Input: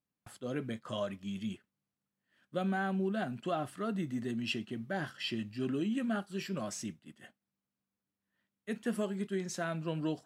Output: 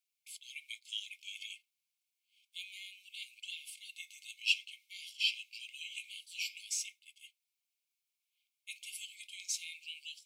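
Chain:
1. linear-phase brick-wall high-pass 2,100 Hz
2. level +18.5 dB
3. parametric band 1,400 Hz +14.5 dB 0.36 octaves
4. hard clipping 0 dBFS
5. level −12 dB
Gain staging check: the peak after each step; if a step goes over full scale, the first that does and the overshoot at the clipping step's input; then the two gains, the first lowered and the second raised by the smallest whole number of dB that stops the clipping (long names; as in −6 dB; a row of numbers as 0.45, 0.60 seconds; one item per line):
−23.0, −4.5, −4.5, −4.5, −16.5 dBFS
no step passes full scale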